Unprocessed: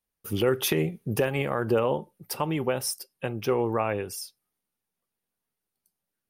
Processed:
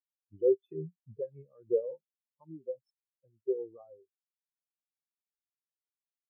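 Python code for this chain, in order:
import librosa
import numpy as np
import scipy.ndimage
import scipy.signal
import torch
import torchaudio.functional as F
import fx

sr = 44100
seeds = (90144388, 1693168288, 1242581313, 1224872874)

y = fx.spectral_expand(x, sr, expansion=4.0)
y = F.gain(torch.from_numpy(y), -3.5).numpy()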